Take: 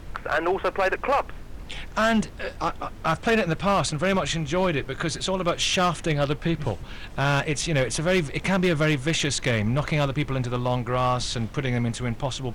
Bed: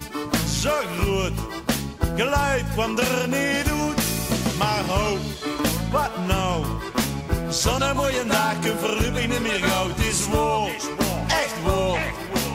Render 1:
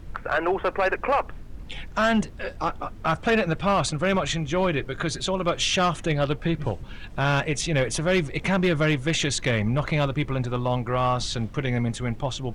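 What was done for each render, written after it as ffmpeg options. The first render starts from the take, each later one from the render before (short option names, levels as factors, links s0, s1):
-af "afftdn=nr=7:nf=-40"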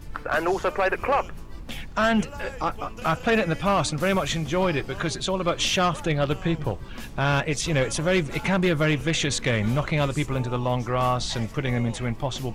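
-filter_complex "[1:a]volume=0.119[s0];[0:a][s0]amix=inputs=2:normalize=0"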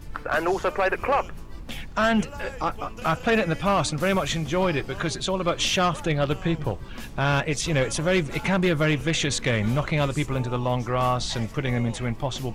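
-af anull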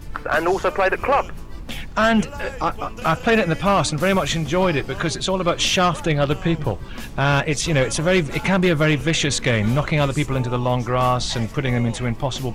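-af "volume=1.68"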